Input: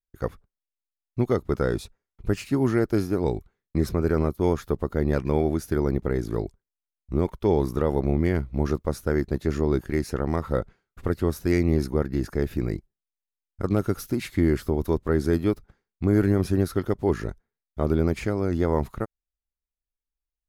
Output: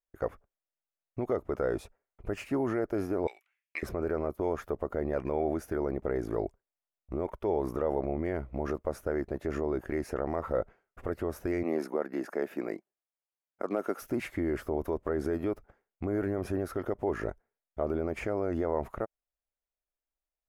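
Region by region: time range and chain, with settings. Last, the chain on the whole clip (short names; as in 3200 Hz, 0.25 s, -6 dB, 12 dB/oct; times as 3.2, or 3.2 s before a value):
3.27–3.83 resonant high-pass 2500 Hz, resonance Q 3.7 + transient shaper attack +11 dB, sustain +1 dB
11.63–14.02 HPF 210 Hz 24 dB/oct + bell 310 Hz -4 dB 2.1 oct
whole clip: fifteen-band EQ 160 Hz -4 dB, 630 Hz +8 dB, 4000 Hz -10 dB; limiter -18 dBFS; tone controls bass -7 dB, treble -9 dB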